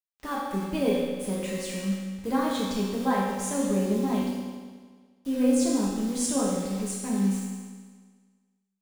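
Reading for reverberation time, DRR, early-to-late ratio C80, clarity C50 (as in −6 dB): 1.6 s, −5.5 dB, 2.0 dB, −0.5 dB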